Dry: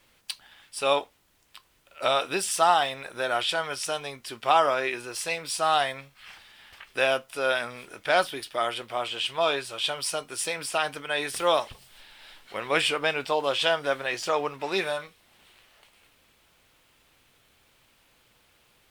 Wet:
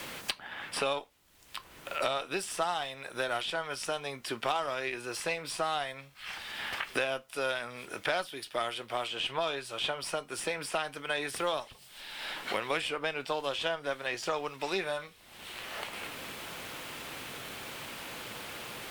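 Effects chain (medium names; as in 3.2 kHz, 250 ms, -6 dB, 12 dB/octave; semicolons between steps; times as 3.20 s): Chebyshev shaper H 3 -21 dB, 8 -33 dB, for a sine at -6.5 dBFS; three bands compressed up and down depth 100%; trim -5 dB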